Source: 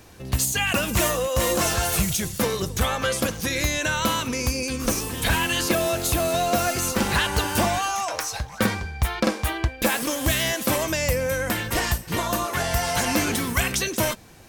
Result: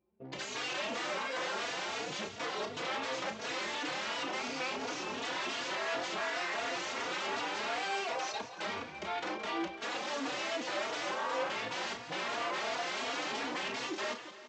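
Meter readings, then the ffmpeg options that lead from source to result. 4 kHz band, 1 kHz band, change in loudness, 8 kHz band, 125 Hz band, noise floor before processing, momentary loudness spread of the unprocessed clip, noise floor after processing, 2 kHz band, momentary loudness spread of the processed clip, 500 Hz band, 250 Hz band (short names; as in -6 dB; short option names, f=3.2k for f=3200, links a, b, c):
-10.0 dB, -9.5 dB, -12.5 dB, -19.5 dB, -28.5 dB, -40 dBFS, 4 LU, -47 dBFS, -10.0 dB, 3 LU, -12.5 dB, -16.5 dB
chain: -filter_complex "[0:a]anlmdn=15.8,equalizer=f=1.6k:w=3.7:g=-9,acompressor=threshold=-22dB:ratio=12,aresample=16000,aeval=exprs='0.0335*(abs(mod(val(0)/0.0335+3,4)-2)-1)':c=same,aresample=44100,crystalizer=i=0.5:c=0,asplit=2[a][b];[b]asoftclip=type=hard:threshold=-38dB,volume=-4.5dB[c];[a][c]amix=inputs=2:normalize=0,highpass=330,lowpass=3.3k,asplit=2[d][e];[e]adelay=33,volume=-8.5dB[f];[d][f]amix=inputs=2:normalize=0,aecho=1:1:170|340|510|680|850|1020:0.266|0.149|0.0834|0.0467|0.0262|0.0147,asplit=2[g][h];[h]adelay=3.5,afreqshift=2.8[i];[g][i]amix=inputs=2:normalize=1"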